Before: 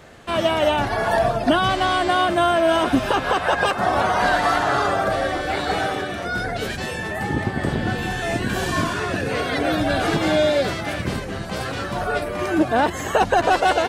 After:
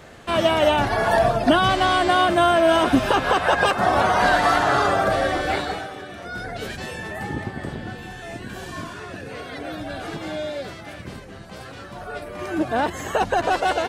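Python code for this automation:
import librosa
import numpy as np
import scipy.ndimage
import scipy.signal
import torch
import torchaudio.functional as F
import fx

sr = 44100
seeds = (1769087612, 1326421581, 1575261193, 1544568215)

y = fx.gain(x, sr, db=fx.line((5.54, 1.0), (5.88, -11.0), (6.65, -4.5), (7.24, -4.5), (8.02, -11.0), (12.0, -11.0), (12.73, -3.5)))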